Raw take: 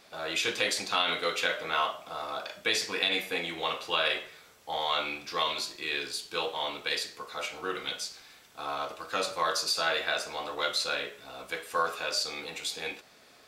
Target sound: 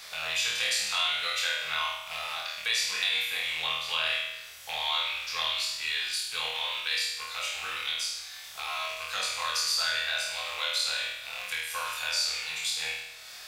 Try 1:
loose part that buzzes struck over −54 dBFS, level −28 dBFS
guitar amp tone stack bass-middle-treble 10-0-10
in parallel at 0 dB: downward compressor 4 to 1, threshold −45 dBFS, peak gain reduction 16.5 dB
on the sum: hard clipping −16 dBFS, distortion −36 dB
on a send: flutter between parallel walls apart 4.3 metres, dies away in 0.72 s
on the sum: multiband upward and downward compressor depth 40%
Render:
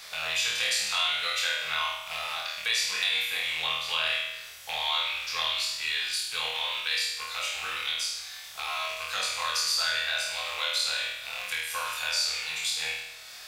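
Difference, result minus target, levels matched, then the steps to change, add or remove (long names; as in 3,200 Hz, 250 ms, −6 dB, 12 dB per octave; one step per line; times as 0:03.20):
downward compressor: peak gain reduction −7 dB
change: downward compressor 4 to 1, threshold −54 dBFS, peak gain reduction 23.5 dB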